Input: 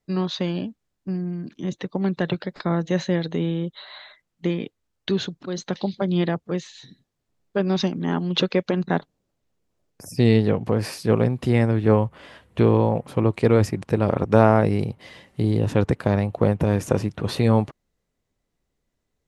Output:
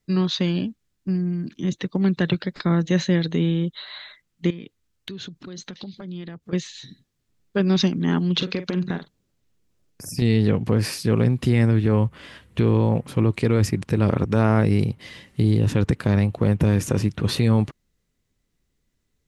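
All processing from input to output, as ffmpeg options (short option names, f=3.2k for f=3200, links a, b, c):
-filter_complex "[0:a]asettb=1/sr,asplit=3[a][b][c];[a]atrim=end=4.504[d];[b]atrim=start=4.5:end=6.53,asetpts=PTS-STARTPTS,afade=t=in:d=0.004:c=qsin,afade=t=out:st=2.026:d=0.004:c=qsin,acompressor=threshold=-36dB:ratio=5:attack=3.2:release=140:knee=1:detection=peak,aeval=exprs='0.1*(abs(mod(val(0)/0.1+3,4)-2)-1)':c=same[e];[c]atrim=start=6.526[f];[d][e]acrossfade=d=0.004:c1=hsin:c2=qsin[g];[g][f]acrossfade=d=0.004:c1=qsin:c2=hsin,asettb=1/sr,asplit=3[h][i][j];[h]atrim=end=8.344[k];[i]atrim=start=8.34:end=10.22,asetpts=PTS-STARTPTS,afade=t=in:d=0.004:c=qsin,afade=t=out:st=1.876:d=0.004:c=qsin,acompressor=threshold=-22dB:ratio=10:attack=3.2:release=140:knee=1:detection=peak,asplit=2[l][m];[m]adelay=45,volume=-11dB[n];[l][n]amix=inputs=2:normalize=0,atrim=end_sample=82908[o];[j]atrim=start=10.216[p];[k][o]acrossfade=d=0.004:c1=hsin:c2=qsin[q];[q][p]acrossfade=d=0.004:c1=qsin:c2=hsin,equalizer=f=700:w=0.87:g=-9.5,alimiter=limit=-14dB:level=0:latency=1:release=40,volume=5dB"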